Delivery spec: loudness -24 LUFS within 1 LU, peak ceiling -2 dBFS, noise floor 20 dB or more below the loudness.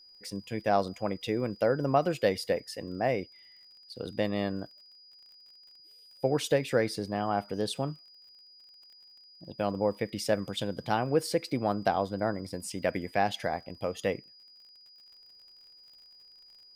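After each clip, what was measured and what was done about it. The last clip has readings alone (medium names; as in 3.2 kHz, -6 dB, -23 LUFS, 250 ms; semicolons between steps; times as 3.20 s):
tick rate 39 per s; steady tone 4.9 kHz; tone level -53 dBFS; loudness -31.0 LUFS; peak level -11.0 dBFS; loudness target -24.0 LUFS
-> de-click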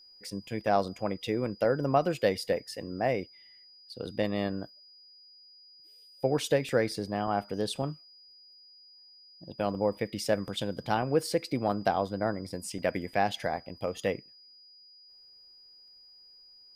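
tick rate 0.18 per s; steady tone 4.9 kHz; tone level -53 dBFS
-> band-stop 4.9 kHz, Q 30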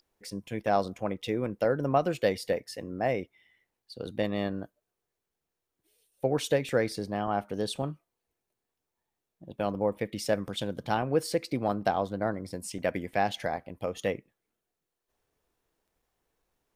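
steady tone not found; loudness -31.0 LUFS; peak level -11.0 dBFS; loudness target -24.0 LUFS
-> trim +7 dB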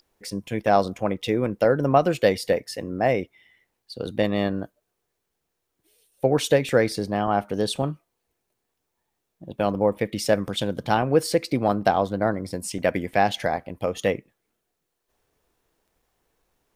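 loudness -24.0 LUFS; peak level -4.0 dBFS; noise floor -79 dBFS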